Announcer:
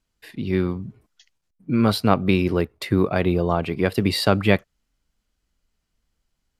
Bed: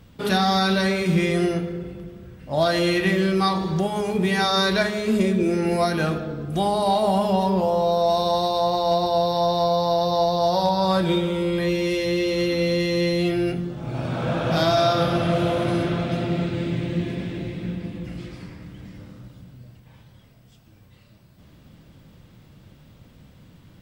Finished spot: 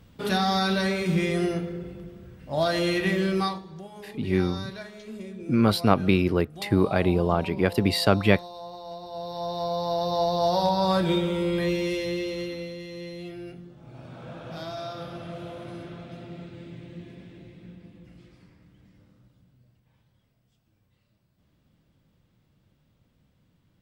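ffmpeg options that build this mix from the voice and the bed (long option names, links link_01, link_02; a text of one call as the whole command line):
ffmpeg -i stem1.wav -i stem2.wav -filter_complex "[0:a]adelay=3800,volume=-2dB[link_01];[1:a]volume=12dB,afade=type=out:start_time=3.4:duration=0.22:silence=0.188365,afade=type=in:start_time=9.05:duration=1.46:silence=0.158489,afade=type=out:start_time=11.62:duration=1.12:silence=0.199526[link_02];[link_01][link_02]amix=inputs=2:normalize=0" out.wav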